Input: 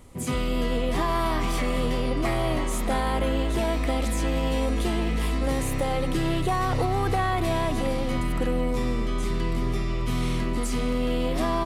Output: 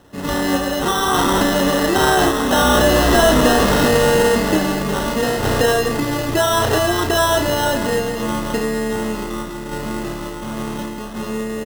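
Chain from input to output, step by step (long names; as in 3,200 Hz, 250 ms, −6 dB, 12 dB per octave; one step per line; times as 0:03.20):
source passing by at 0:03.25, 44 m/s, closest 12 metres
high-pass filter 250 Hz 6 dB per octave
high-shelf EQ 7,600 Hz −11.5 dB
in parallel at −2 dB: downward compressor, threshold −46 dBFS, peak gain reduction 19.5 dB
on the sum: decimation without filtering 19×
soft clipping −31 dBFS, distortion −9 dB
sample-and-hold tremolo
double-tracking delay 32 ms −5 dB
boost into a limiter +35 dB
level −6.5 dB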